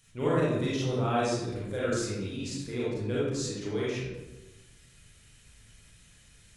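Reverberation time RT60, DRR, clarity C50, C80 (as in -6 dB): 1.1 s, -8.5 dB, -3.0 dB, 1.5 dB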